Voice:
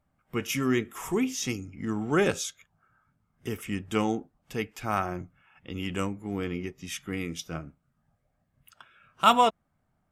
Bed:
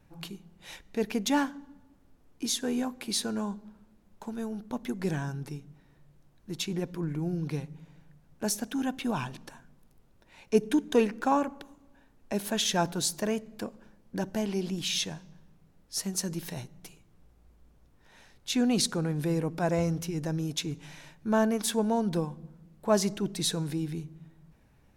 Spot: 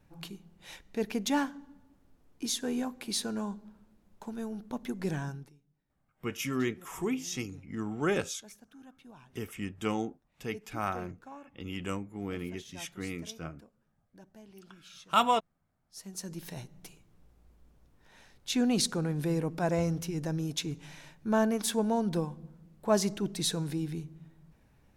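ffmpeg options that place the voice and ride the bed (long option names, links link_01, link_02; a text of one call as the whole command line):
ffmpeg -i stem1.wav -i stem2.wav -filter_complex "[0:a]adelay=5900,volume=-5dB[link_01];[1:a]volume=18.5dB,afade=type=out:start_time=5.28:duration=0.24:silence=0.1,afade=type=in:start_time=15.84:duration=0.97:silence=0.0891251[link_02];[link_01][link_02]amix=inputs=2:normalize=0" out.wav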